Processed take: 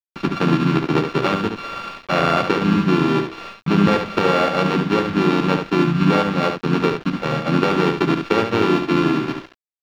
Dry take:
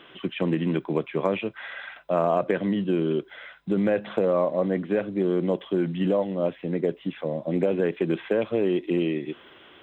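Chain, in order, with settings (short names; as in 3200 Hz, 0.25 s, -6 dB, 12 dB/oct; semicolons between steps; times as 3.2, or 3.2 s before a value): sample sorter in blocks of 32 samples; gate -46 dBFS, range -30 dB; bell 890 Hz -7 dB 1.4 oct; de-hum 96.54 Hz, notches 5; in parallel at +1.5 dB: compressor, threshold -34 dBFS, peak gain reduction 13.5 dB; on the sum: harmoniser -3 st -5 dB; bit-crush 6-bit; air absorption 260 m; on a send: echo 71 ms -6.5 dB; on the sum: gain +5.5 dB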